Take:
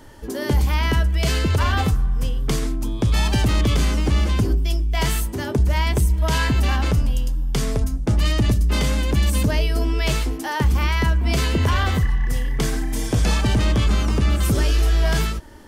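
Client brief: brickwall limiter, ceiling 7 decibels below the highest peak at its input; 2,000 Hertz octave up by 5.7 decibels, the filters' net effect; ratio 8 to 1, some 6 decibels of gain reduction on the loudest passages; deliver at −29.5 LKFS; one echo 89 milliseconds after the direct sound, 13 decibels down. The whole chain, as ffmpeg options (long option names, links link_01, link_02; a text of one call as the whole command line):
ffmpeg -i in.wav -af "equalizer=frequency=2000:width_type=o:gain=7,acompressor=threshold=-20dB:ratio=8,alimiter=limit=-17dB:level=0:latency=1,aecho=1:1:89:0.224,volume=-3.5dB" out.wav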